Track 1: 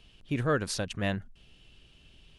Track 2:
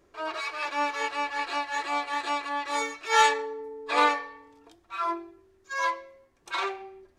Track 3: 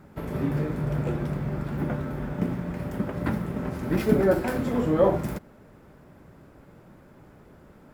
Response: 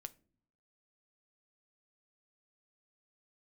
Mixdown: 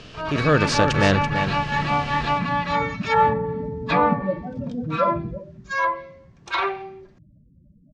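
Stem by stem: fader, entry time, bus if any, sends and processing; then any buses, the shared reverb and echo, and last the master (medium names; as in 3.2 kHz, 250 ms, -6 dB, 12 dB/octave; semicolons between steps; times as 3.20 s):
+3.0 dB, 0.00 s, no send, echo send -9 dB, spectral levelling over time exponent 0.6; level rider gain up to 3.5 dB
+3.0 dB, 0.00 s, no send, no echo send, low-pass that closes with the level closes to 880 Hz, closed at -21.5 dBFS
-1.5 dB, 0.00 s, no send, echo send -13 dB, loudest bins only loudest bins 8; static phaser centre 2 kHz, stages 8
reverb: none
echo: delay 334 ms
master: level rider gain up to 4 dB; low-pass 6.5 kHz 24 dB/octave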